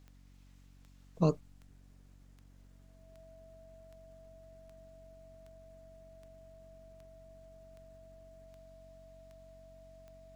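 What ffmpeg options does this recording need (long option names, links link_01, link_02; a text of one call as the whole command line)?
ffmpeg -i in.wav -af "adeclick=threshold=4,bandreject=frequency=46.8:width_type=h:width=4,bandreject=frequency=93.6:width_type=h:width=4,bandreject=frequency=140.4:width_type=h:width=4,bandreject=frequency=187.2:width_type=h:width=4,bandreject=frequency=234:width_type=h:width=4,bandreject=frequency=280.8:width_type=h:width=4,bandreject=frequency=650:width=30" out.wav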